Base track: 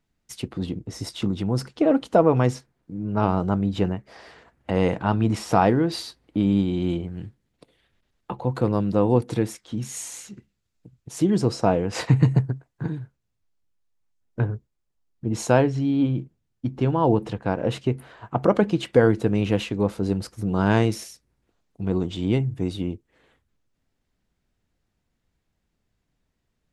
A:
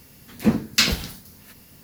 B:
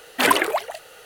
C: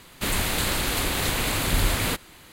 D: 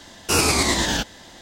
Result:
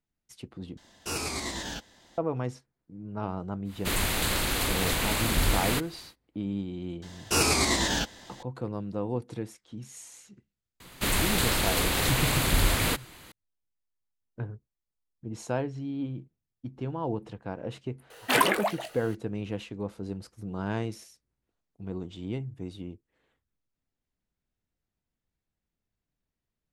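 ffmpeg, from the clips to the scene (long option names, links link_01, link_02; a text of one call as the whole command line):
ffmpeg -i bed.wav -i cue0.wav -i cue1.wav -i cue2.wav -i cue3.wav -filter_complex "[4:a]asplit=2[link_01][link_02];[3:a]asplit=2[link_03][link_04];[0:a]volume=-12dB[link_05];[2:a]asplit=2[link_06][link_07];[link_07]adelay=19,volume=-9dB[link_08];[link_06][link_08]amix=inputs=2:normalize=0[link_09];[link_05]asplit=2[link_10][link_11];[link_10]atrim=end=0.774[link_12];[link_01]atrim=end=1.41,asetpts=PTS-STARTPTS,volume=-14dB[link_13];[link_11]atrim=start=2.176[link_14];[link_03]atrim=end=2.52,asetpts=PTS-STARTPTS,volume=-2.5dB,afade=type=in:duration=0.1,afade=type=out:start_time=2.42:duration=0.1,adelay=3640[link_15];[link_02]atrim=end=1.41,asetpts=PTS-STARTPTS,volume=-5dB,afade=type=in:duration=0.004:curve=hsin,afade=type=out:start_time=1.406:duration=0.004:curve=hsin,adelay=7020[link_16];[link_04]atrim=end=2.52,asetpts=PTS-STARTPTS,volume=-1dB,afade=type=in:duration=0.004:curve=hsin,afade=type=out:start_time=2.516:duration=0.004:curve=hsin,adelay=10800[link_17];[link_09]atrim=end=1.05,asetpts=PTS-STARTPTS,volume=-5.5dB,afade=type=in:duration=0.004:curve=hsin,afade=type=out:start_time=1.046:duration=0.004:curve=hsin,adelay=18100[link_18];[link_12][link_13]acrossfade=duration=0.004:curve1=hsin:curve2=hsin[link_19];[link_19][link_14]acrossfade=duration=0.004:curve1=hsin:curve2=hsin[link_20];[link_20][link_15][link_16][link_17][link_18]amix=inputs=5:normalize=0" out.wav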